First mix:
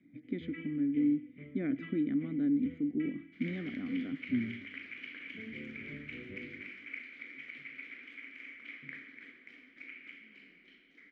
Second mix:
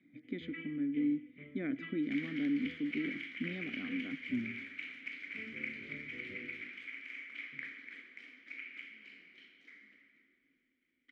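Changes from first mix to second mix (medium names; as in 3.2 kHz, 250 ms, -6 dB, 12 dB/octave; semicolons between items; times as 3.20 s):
second sound: entry -1.30 s; master: add tilt EQ +2 dB/octave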